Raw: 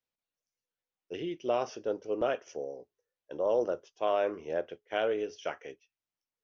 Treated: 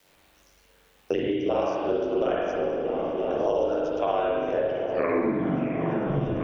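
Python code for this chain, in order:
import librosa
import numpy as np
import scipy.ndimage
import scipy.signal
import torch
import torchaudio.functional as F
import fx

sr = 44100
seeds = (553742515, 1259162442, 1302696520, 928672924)

y = fx.tape_stop_end(x, sr, length_s=1.88)
y = y * np.sin(2.0 * np.pi * 48.0 * np.arange(len(y)) / sr)
y = fx.echo_opening(y, sr, ms=342, hz=200, octaves=1, feedback_pct=70, wet_db=-6)
y = fx.rev_spring(y, sr, rt60_s=1.3, pass_ms=(42, 55), chirp_ms=25, drr_db=-5.0)
y = fx.band_squash(y, sr, depth_pct=100)
y = F.gain(torch.from_numpy(y), 2.0).numpy()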